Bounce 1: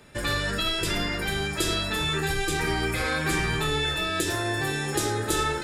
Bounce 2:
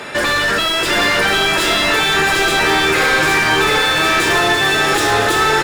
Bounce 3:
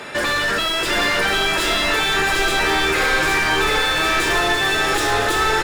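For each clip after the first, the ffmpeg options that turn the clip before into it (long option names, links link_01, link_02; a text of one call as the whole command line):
ffmpeg -i in.wav -filter_complex "[0:a]equalizer=frequency=75:width=0.39:gain=-4,asplit=2[link_01][link_02];[link_02]highpass=frequency=720:poles=1,volume=31dB,asoftclip=type=tanh:threshold=-12dB[link_03];[link_01][link_03]amix=inputs=2:normalize=0,lowpass=frequency=2400:poles=1,volume=-6dB,aecho=1:1:747:0.708,volume=4.5dB" out.wav
ffmpeg -i in.wav -af "asubboost=boost=4.5:cutoff=58,volume=-4dB" out.wav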